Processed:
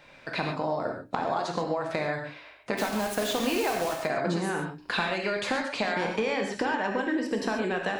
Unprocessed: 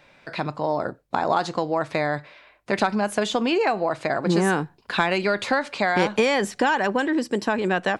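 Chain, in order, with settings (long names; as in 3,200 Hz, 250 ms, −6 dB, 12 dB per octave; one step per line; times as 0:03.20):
mains-hum notches 60/120/180/240/300 Hz
downward compressor 10 to 1, threshold −26 dBFS, peak gain reduction 11.5 dB
0:02.76–0:03.98: bit-depth reduction 6 bits, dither none
0:06.07–0:07.26: high-frequency loss of the air 73 metres
reverb whose tail is shaped and stops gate 160 ms flat, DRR 1.5 dB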